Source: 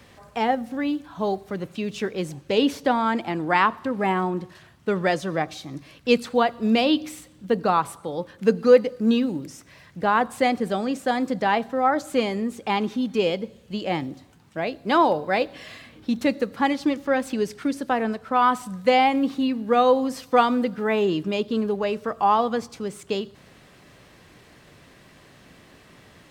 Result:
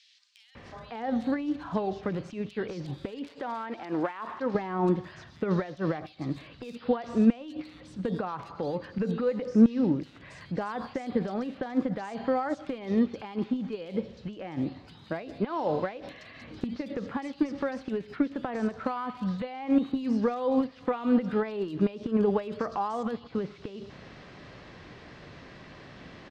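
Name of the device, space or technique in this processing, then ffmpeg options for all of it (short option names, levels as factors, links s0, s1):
de-esser from a sidechain: -filter_complex "[0:a]lowpass=f=5100:w=0.5412,lowpass=f=5100:w=1.3066,asplit=2[s0][s1];[s1]highpass=5000,apad=whole_len=1159910[s2];[s0][s2]sidechaincompress=threshold=0.00126:ratio=16:attack=1.5:release=49,asettb=1/sr,asplit=3[s3][s4][s5];[s3]atrim=end=2.724[s6];[s4]atrim=start=2.72:end=4,asetpts=PTS-STARTPTS,afade=t=in:d=0.004:c=qsin,afade=t=out:st=1.276:d=0.004:c=qsin,bass=f=250:g=-12,treble=f=4000:g=4[s7];[s5]atrim=start=3.996[s8];[s6][s7]acrossfade=d=0.004:c1=hsin:c2=qsin[s9];[s9][s8]acrossfade=d=0.004:c1=qsin:c2=hsin,acrossover=split=3200[s10][s11];[s10]adelay=550[s12];[s12][s11]amix=inputs=2:normalize=0,volume=1.58"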